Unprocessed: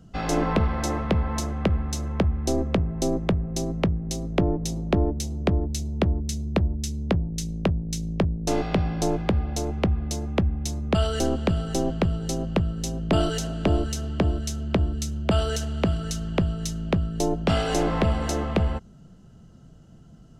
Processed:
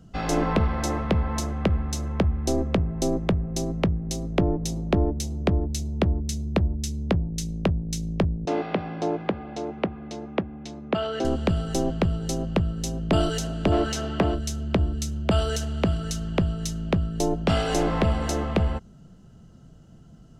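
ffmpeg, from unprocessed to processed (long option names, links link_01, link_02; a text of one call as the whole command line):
ffmpeg -i in.wav -filter_complex "[0:a]asettb=1/sr,asplit=3[link_01][link_02][link_03];[link_01]atrim=end=8.454[link_04];[link_02]atrim=start=8.45:end=11.25,asetpts=PTS-STARTPTS,afade=type=in:duration=0.004:curve=qsin,afade=type=out:start_time=2.796:duration=0.004:curve=qsin,highpass=220,lowpass=3000[link_05];[link_03]atrim=start=11.246[link_06];[link_04][link_05]acrossfade=duration=0.004:curve1=hsin:curve2=qsin[link_07];[link_07][link_06]acrossfade=duration=0.004:curve1=qsin:curve2=hsin,asplit=3[link_08][link_09][link_10];[link_08]afade=type=out:start_time=13.71:duration=0.02[link_11];[link_09]asplit=2[link_12][link_13];[link_13]highpass=frequency=720:poles=1,volume=18dB,asoftclip=type=tanh:threshold=-11dB[link_14];[link_12][link_14]amix=inputs=2:normalize=0,lowpass=frequency=2200:poles=1,volume=-6dB,afade=type=in:start_time=13.71:duration=0.02,afade=type=out:start_time=14.34:duration=0.02[link_15];[link_10]afade=type=in:start_time=14.34:duration=0.02[link_16];[link_11][link_15][link_16]amix=inputs=3:normalize=0" out.wav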